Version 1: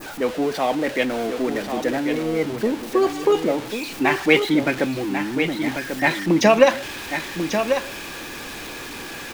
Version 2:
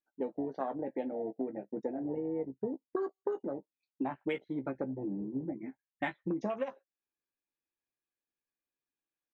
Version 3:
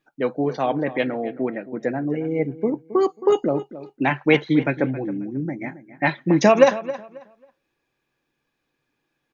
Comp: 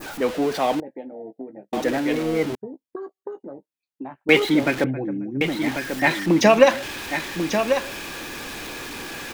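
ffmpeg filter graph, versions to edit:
-filter_complex "[1:a]asplit=2[a][b];[0:a]asplit=4[c][d][e][f];[c]atrim=end=0.802[g];[a]atrim=start=0.798:end=1.732[h];[d]atrim=start=1.728:end=2.552[i];[b]atrim=start=2.548:end=4.292[j];[e]atrim=start=4.288:end=4.842[k];[2:a]atrim=start=4.838:end=5.412[l];[f]atrim=start=5.408[m];[g][h]acrossfade=d=0.004:c1=hsin:c2=hsin[n];[n][i]acrossfade=d=0.004:c1=hsin:c2=hsin[o];[o][j]acrossfade=d=0.004:c1=hsin:c2=hsin[p];[p][k]acrossfade=d=0.004:c1=hsin:c2=hsin[q];[q][l]acrossfade=d=0.004:c1=hsin:c2=hsin[r];[r][m]acrossfade=d=0.004:c1=hsin:c2=hsin"

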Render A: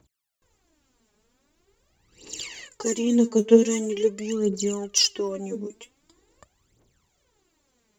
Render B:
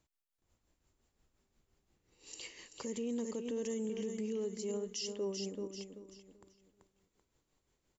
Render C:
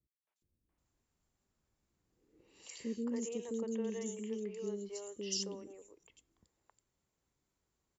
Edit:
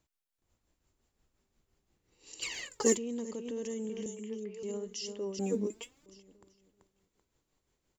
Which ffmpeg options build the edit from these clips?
-filter_complex "[0:a]asplit=2[a][b];[1:a]asplit=4[c][d][e][f];[c]atrim=end=2.422[g];[a]atrim=start=2.418:end=2.972[h];[d]atrim=start=2.968:end=4.062[i];[2:a]atrim=start=4.058:end=4.632[j];[e]atrim=start=4.628:end=5.392[k];[b]atrim=start=5.388:end=6.062[l];[f]atrim=start=6.058[m];[g][h]acrossfade=d=0.004:c1=hsin:c2=hsin[n];[n][i]acrossfade=d=0.004:c1=hsin:c2=hsin[o];[o][j]acrossfade=d=0.004:c1=hsin:c2=hsin[p];[p][k]acrossfade=d=0.004:c1=hsin:c2=hsin[q];[q][l]acrossfade=d=0.004:c1=hsin:c2=hsin[r];[r][m]acrossfade=d=0.004:c1=hsin:c2=hsin"

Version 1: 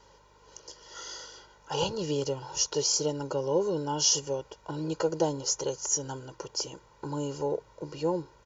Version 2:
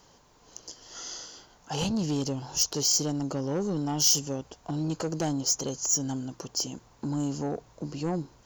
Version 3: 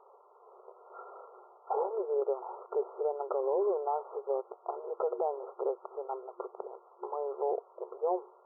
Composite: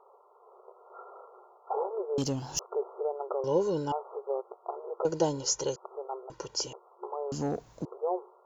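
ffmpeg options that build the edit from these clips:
-filter_complex "[1:a]asplit=2[a][b];[0:a]asplit=3[c][d][e];[2:a]asplit=6[f][g][h][i][j][k];[f]atrim=end=2.182[l];[a]atrim=start=2.178:end=2.592[m];[g]atrim=start=2.588:end=3.442[n];[c]atrim=start=3.438:end=3.922[o];[h]atrim=start=3.918:end=5.052[p];[d]atrim=start=5.048:end=5.762[q];[i]atrim=start=5.758:end=6.302[r];[e]atrim=start=6.298:end=6.732[s];[j]atrim=start=6.728:end=7.322[t];[b]atrim=start=7.318:end=7.852[u];[k]atrim=start=7.848[v];[l][m]acrossfade=d=0.004:c1=hsin:c2=hsin[w];[w][n]acrossfade=d=0.004:c1=hsin:c2=hsin[x];[x][o]acrossfade=d=0.004:c1=hsin:c2=hsin[y];[y][p]acrossfade=d=0.004:c1=hsin:c2=hsin[z];[z][q]acrossfade=d=0.004:c1=hsin:c2=hsin[aa];[aa][r]acrossfade=d=0.004:c1=hsin:c2=hsin[ab];[ab][s]acrossfade=d=0.004:c1=hsin:c2=hsin[ac];[ac][t]acrossfade=d=0.004:c1=hsin:c2=hsin[ad];[ad][u]acrossfade=d=0.004:c1=hsin:c2=hsin[ae];[ae][v]acrossfade=d=0.004:c1=hsin:c2=hsin"

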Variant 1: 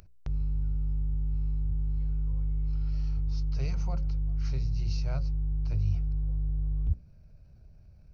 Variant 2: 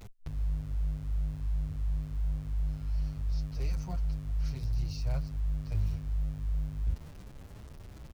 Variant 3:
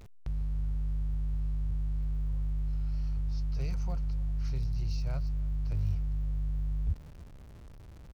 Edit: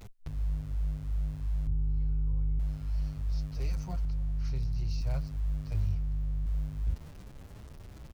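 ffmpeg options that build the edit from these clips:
-filter_complex "[2:a]asplit=2[a][b];[1:a]asplit=4[c][d][e][f];[c]atrim=end=1.672[g];[0:a]atrim=start=1.668:end=2.592[h];[d]atrim=start=2.588:end=4.052[i];[a]atrim=start=4.048:end=5.012[j];[e]atrim=start=5.008:end=5.862[k];[b]atrim=start=5.858:end=6.462[l];[f]atrim=start=6.458[m];[g][h]acrossfade=d=0.004:c1=hsin:c2=hsin[n];[n][i]acrossfade=d=0.004:c1=hsin:c2=hsin[o];[o][j]acrossfade=d=0.004:c1=hsin:c2=hsin[p];[p][k]acrossfade=d=0.004:c1=hsin:c2=hsin[q];[q][l]acrossfade=d=0.004:c1=hsin:c2=hsin[r];[r][m]acrossfade=d=0.004:c1=hsin:c2=hsin"

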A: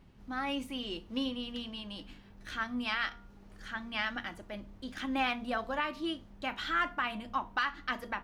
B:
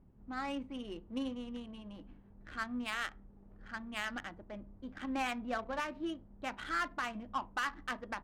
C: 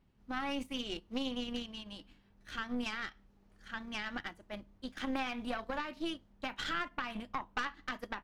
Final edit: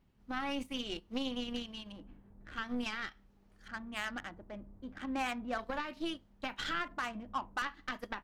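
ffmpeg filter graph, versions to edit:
-filter_complex "[1:a]asplit=3[a][b][c];[2:a]asplit=4[d][e][f][g];[d]atrim=end=1.922[h];[a]atrim=start=1.918:end=2.562[i];[e]atrim=start=2.558:end=3.682[j];[b]atrim=start=3.678:end=5.582[k];[f]atrim=start=5.578:end=6.882[l];[c]atrim=start=6.878:end=7.622[m];[g]atrim=start=7.618[n];[h][i]acrossfade=d=0.004:c1=hsin:c2=hsin[o];[o][j]acrossfade=d=0.004:c1=hsin:c2=hsin[p];[p][k]acrossfade=d=0.004:c1=hsin:c2=hsin[q];[q][l]acrossfade=d=0.004:c1=hsin:c2=hsin[r];[r][m]acrossfade=d=0.004:c1=hsin:c2=hsin[s];[s][n]acrossfade=d=0.004:c1=hsin:c2=hsin"

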